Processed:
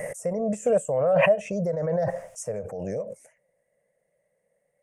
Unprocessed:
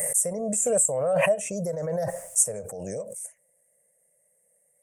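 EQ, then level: air absorption 270 m; high shelf 3700 Hz +6.5 dB; +3.5 dB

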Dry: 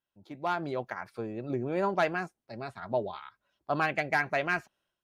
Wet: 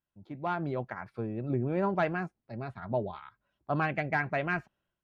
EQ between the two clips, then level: tone controls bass +9 dB, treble -14 dB; -2.0 dB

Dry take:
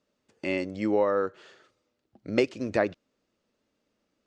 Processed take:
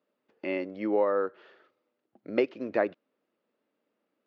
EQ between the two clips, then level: BPF 270–6700 Hz; air absorption 210 m; high shelf 4400 Hz -7.5 dB; 0.0 dB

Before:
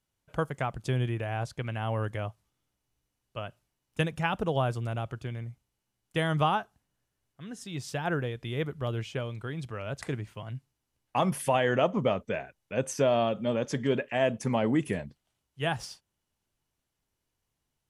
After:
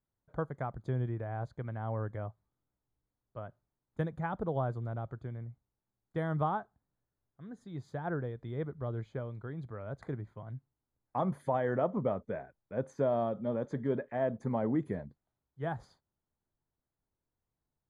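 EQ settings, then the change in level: running mean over 16 samples; -4.5 dB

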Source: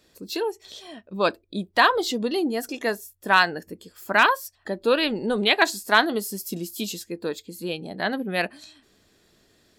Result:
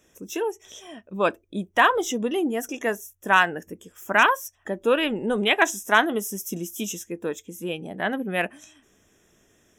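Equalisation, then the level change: Butterworth band-stop 4400 Hz, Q 1.9; bell 6000 Hz +8.5 dB 0.34 oct; 0.0 dB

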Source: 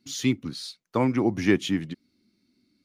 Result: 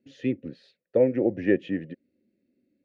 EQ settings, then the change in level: vowel filter e; tilt -4.5 dB/oct; +8.5 dB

